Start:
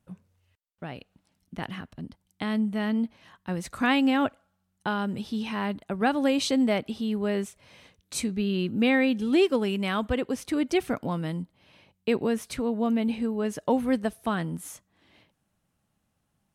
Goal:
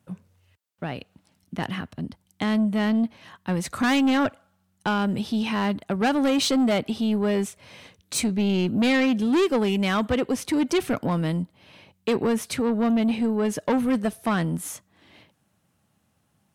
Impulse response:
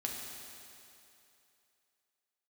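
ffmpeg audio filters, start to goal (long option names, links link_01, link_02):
-af "highpass=frequency=68:width=0.5412,highpass=frequency=68:width=1.3066,asoftclip=type=tanh:threshold=-24dB,volume=7dB"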